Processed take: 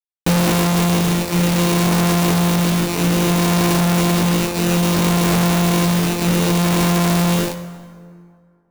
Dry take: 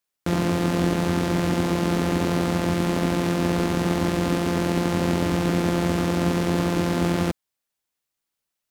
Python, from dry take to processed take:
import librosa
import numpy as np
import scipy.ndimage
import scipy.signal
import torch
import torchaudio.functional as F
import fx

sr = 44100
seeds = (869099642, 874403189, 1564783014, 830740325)

y = fx.dereverb_blind(x, sr, rt60_s=1.1)
y = fx.hum_notches(y, sr, base_hz=50, count=7)
y = y + 10.0 ** (-15.0 / 20.0) * np.pad(y, (int(329 * sr / 1000.0), 0))[:len(y)]
y = fx.tremolo_shape(y, sr, shape='triangle', hz=0.61, depth_pct=95)
y = fx.resonator_bank(y, sr, root=50, chord='minor', decay_s=0.49)
y = fx.sample_hold(y, sr, seeds[0], rate_hz=3300.0, jitter_pct=0)
y = fx.band_shelf(y, sr, hz=1100.0, db=-10.0, octaves=1.7)
y = fx.fuzz(y, sr, gain_db=61.0, gate_db=-59.0)
y = fx.high_shelf(y, sr, hz=5400.0, db=6.0)
y = fx.rev_plate(y, sr, seeds[1], rt60_s=2.1, hf_ratio=0.6, predelay_ms=0, drr_db=10.5)